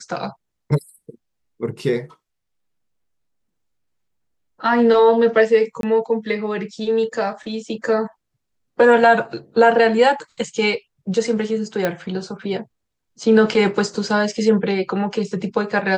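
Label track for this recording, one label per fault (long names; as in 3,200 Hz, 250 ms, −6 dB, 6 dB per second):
5.810000	5.830000	drop-out 22 ms
11.850000	11.850000	click −7 dBFS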